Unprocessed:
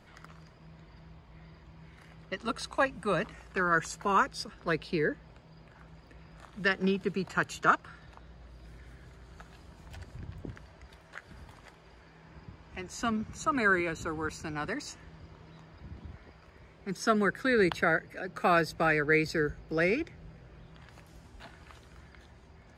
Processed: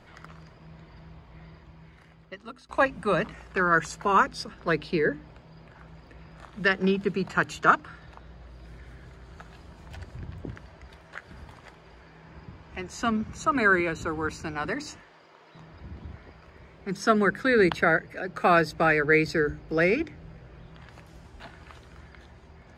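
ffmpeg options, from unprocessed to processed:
ffmpeg -i in.wav -filter_complex "[0:a]asettb=1/sr,asplit=3[link_01][link_02][link_03];[link_01]atrim=end=14.994[link_04];[link_02]atrim=start=14.99:end=15.55,asetpts=PTS-STARTPTS,afade=type=in:duration=0.004:curve=qsin,afade=type=out:start_time=0.556:duration=0.004:curve=qsin,highpass=480[link_05];[link_03]atrim=start=15.546[link_06];[link_04][link_05]acrossfade=duration=0.004:curve1=hsin:curve2=qsin[link_07];[link_07][link_06]acrossfade=duration=0.004:curve1=qsin:curve2=hsin,asplit=2[link_08][link_09];[link_08]atrim=end=2.69,asetpts=PTS-STARTPTS,afade=type=out:start_time=1.44:duration=1.25:silence=0.0707946[link_10];[link_09]atrim=start=2.69,asetpts=PTS-STARTPTS,afade=type=in:duration=0.004:curve=hsin:silence=0.0707946[link_11];[link_10][link_11]concat=n=2:v=0:a=1,highshelf=frequency=6100:gain=-7,bandreject=frequency=50:width_type=h:width=6,bandreject=frequency=100:width_type=h:width=6,bandreject=frequency=150:width_type=h:width=6,bandreject=frequency=200:width_type=h:width=6,bandreject=frequency=250:width_type=h:width=6,bandreject=frequency=300:width_type=h:width=6,volume=5dB" out.wav

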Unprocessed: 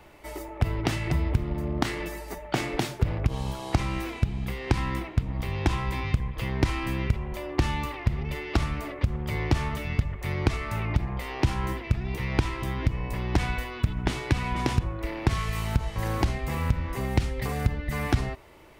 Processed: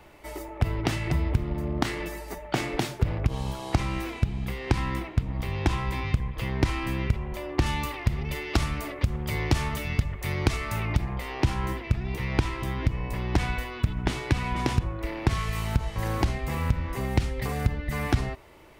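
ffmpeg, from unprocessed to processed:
ffmpeg -i in.wav -filter_complex "[0:a]asettb=1/sr,asplit=3[link_01][link_02][link_03];[link_01]atrim=end=7.664[link_04];[link_02]atrim=start=7.66:end=11.16,asetpts=PTS-STARTPTS,afade=type=in:duration=0.004:curve=qsin,afade=type=out:start_time=3.496:duration=0.004:curve=qsin,highshelf=frequency=4000:gain=8[link_05];[link_03]atrim=start=11.156[link_06];[link_04][link_05]acrossfade=duration=0.004:curve1=hsin:curve2=qsin[link_07];[link_07][link_06]acrossfade=duration=0.004:curve1=qsin:curve2=hsin" out.wav

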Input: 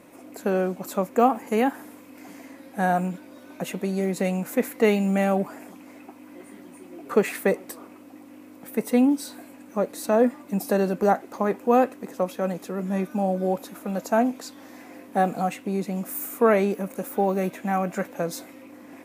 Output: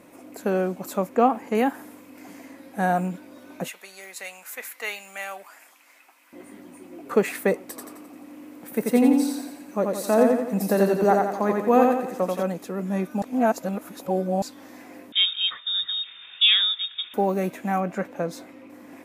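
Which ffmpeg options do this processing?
ffmpeg -i in.wav -filter_complex "[0:a]asettb=1/sr,asplit=3[link_01][link_02][link_03];[link_01]atrim=end=1.094[link_04];[link_02]atrim=start=1.09:end=1.55,asetpts=PTS-STARTPTS,afade=type=in:duration=0.004:curve=qsin,afade=type=out:start_time=0.456:duration=0.004:curve=qsin,acrossover=split=5600[link_05][link_06];[link_06]acompressor=threshold=-59dB:ratio=4:attack=1:release=60[link_07];[link_05][link_07]amix=inputs=2:normalize=0[link_08];[link_03]atrim=start=1.546[link_09];[link_04][link_08]acrossfade=duration=0.004:curve1=hsin:curve2=qsin[link_10];[link_10][link_09]acrossfade=duration=0.004:curve1=qsin:curve2=hsin,asettb=1/sr,asplit=3[link_11][link_12][link_13];[link_11]atrim=end=3.684[link_14];[link_12]atrim=start=3.68:end=6.33,asetpts=PTS-STARTPTS,afade=type=in:duration=0.004:curve=qsin,afade=type=out:start_time=2.646:duration=0.004:curve=qsin,highpass=1400[link_15];[link_13]atrim=start=6.326[link_16];[link_14][link_15]acrossfade=duration=0.004:curve1=hsin:curve2=qsin[link_17];[link_17][link_16]acrossfade=duration=0.004:curve1=qsin:curve2=hsin,asettb=1/sr,asplit=3[link_18][link_19][link_20];[link_18]atrim=end=7.664[link_21];[link_19]atrim=start=7.66:end=12.43,asetpts=PTS-STARTPTS,afade=type=in:duration=0.004:curve=qsin,afade=type=out:start_time=4.766:duration=0.004:curve=qsin,aecho=1:1:87|174|261|348|435|522:0.708|0.347|0.17|0.0833|0.0408|0.02,atrim=end_sample=210357[link_22];[link_20]atrim=start=12.426[link_23];[link_21][link_22]acrossfade=duration=0.004:curve1=hsin:curve2=qsin[link_24];[link_24][link_23]acrossfade=duration=0.004:curve1=qsin:curve2=hsin,asettb=1/sr,asplit=3[link_25][link_26][link_27];[link_25]atrim=end=15.124[link_28];[link_26]atrim=start=15.12:end=17.14,asetpts=PTS-STARTPTS,afade=type=in:duration=0.004:curve=qsin,afade=type=out:start_time=2.016:duration=0.004:curve=qsin,lowpass=frequency=3300:width_type=q:width=0.5098,lowpass=frequency=3300:width_type=q:width=0.6013,lowpass=frequency=3300:width_type=q:width=0.9,lowpass=frequency=3300:width_type=q:width=2.563,afreqshift=-3900[link_29];[link_27]atrim=start=17.136[link_30];[link_28][link_29]acrossfade=duration=0.004:curve1=hsin:curve2=qsin[link_31];[link_31][link_30]acrossfade=duration=0.004:curve1=qsin:curve2=hsin,asettb=1/sr,asplit=3[link_32][link_33][link_34];[link_32]atrim=end=17.804[link_35];[link_33]atrim=start=17.8:end=18.7,asetpts=PTS-STARTPTS,afade=type=in:duration=0.004:curve=qsin,afade=type=out:start_time=0.896:duration=0.004:curve=qsin,lowpass=frequency=3300:poles=1[link_36];[link_34]atrim=start=18.696[link_37];[link_35][link_36]acrossfade=duration=0.004:curve1=hsin:curve2=qsin[link_38];[link_38][link_37]acrossfade=duration=0.004:curve1=qsin:curve2=hsin,asplit=3[link_39][link_40][link_41];[link_39]atrim=end=13.222[link_42];[link_40]atrim=start=13.218:end=14.422,asetpts=PTS-STARTPTS,areverse[link_43];[link_41]atrim=start=14.418[link_44];[link_42][link_43]acrossfade=duration=0.004:curve1=hsin:curve2=hsin[link_45];[link_45][link_44]acrossfade=duration=0.004:curve1=hsin:curve2=hsin" out.wav

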